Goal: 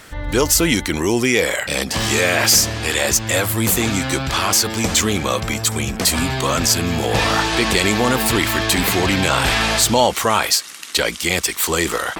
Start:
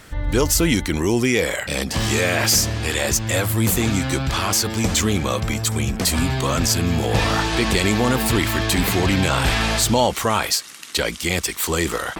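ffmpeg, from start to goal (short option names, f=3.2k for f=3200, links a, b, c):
-af "lowshelf=f=240:g=-7.5,volume=4dB"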